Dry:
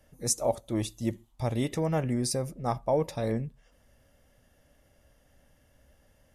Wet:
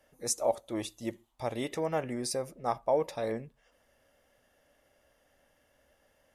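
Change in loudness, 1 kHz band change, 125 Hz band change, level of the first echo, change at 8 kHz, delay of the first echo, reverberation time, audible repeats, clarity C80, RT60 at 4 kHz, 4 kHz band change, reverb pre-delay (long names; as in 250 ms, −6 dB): −3.0 dB, 0.0 dB, −12.5 dB, no echo audible, −3.5 dB, no echo audible, no reverb audible, no echo audible, no reverb audible, no reverb audible, −2.5 dB, no reverb audible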